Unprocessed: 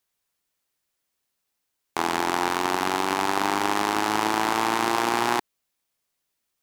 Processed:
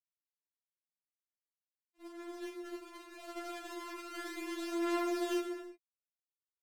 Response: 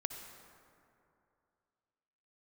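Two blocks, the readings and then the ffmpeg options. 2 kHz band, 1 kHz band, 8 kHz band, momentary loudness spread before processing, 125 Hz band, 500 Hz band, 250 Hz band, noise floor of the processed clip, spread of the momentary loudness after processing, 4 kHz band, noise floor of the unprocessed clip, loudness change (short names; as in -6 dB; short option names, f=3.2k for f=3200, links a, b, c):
-19.0 dB, -22.5 dB, -18.5 dB, 3 LU, under -35 dB, -10.5 dB, -9.5 dB, under -85 dBFS, 16 LU, -18.5 dB, -79 dBFS, -15.5 dB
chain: -filter_complex "[0:a]agate=range=-45dB:threshold=-20dB:ratio=16:detection=peak,equalizer=f=900:t=o:w=0.58:g=-13[a];[1:a]atrim=start_sample=2205,afade=t=out:st=0.4:d=0.01,atrim=end_sample=18081[b];[a][b]afir=irnorm=-1:irlink=0,afftfilt=real='re*4*eq(mod(b,16),0)':imag='im*4*eq(mod(b,16),0)':win_size=2048:overlap=0.75,volume=1dB"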